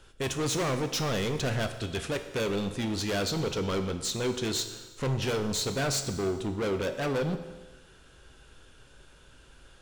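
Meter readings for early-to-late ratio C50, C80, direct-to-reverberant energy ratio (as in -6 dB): 10.0 dB, 11.5 dB, 7.0 dB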